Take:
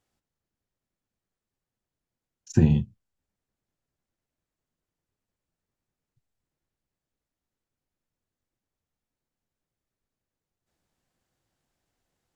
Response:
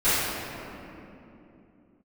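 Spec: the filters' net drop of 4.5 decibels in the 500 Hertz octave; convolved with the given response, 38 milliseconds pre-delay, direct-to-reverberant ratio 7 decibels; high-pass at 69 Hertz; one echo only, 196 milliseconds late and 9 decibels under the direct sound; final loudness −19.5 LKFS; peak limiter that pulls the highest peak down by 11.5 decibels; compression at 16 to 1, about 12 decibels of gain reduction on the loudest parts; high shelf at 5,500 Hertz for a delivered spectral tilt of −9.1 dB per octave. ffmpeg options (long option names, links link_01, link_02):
-filter_complex "[0:a]highpass=69,equalizer=frequency=500:width_type=o:gain=-7.5,highshelf=frequency=5500:gain=-8.5,acompressor=threshold=-26dB:ratio=16,alimiter=level_in=3.5dB:limit=-24dB:level=0:latency=1,volume=-3.5dB,aecho=1:1:196:0.355,asplit=2[link_01][link_02];[1:a]atrim=start_sample=2205,adelay=38[link_03];[link_02][link_03]afir=irnorm=-1:irlink=0,volume=-25.5dB[link_04];[link_01][link_04]amix=inputs=2:normalize=0,volume=23dB"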